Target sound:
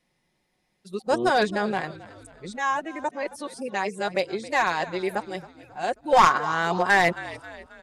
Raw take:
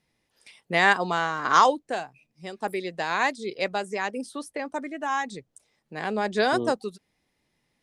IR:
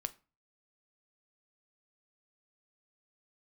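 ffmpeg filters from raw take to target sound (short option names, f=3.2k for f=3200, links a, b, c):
-filter_complex "[0:a]areverse,equalizer=f=750:w=1.5:g=3,aecho=1:1:5.5:0.41,asplit=5[a][b][c][d][e];[b]adelay=269,afreqshift=-54,volume=-18dB[f];[c]adelay=538,afreqshift=-108,volume=-24.2dB[g];[d]adelay=807,afreqshift=-162,volume=-30.4dB[h];[e]adelay=1076,afreqshift=-216,volume=-36.6dB[i];[a][f][g][h][i]amix=inputs=5:normalize=0,aeval=exprs='clip(val(0),-1,0.237)':c=same,aresample=32000,aresample=44100"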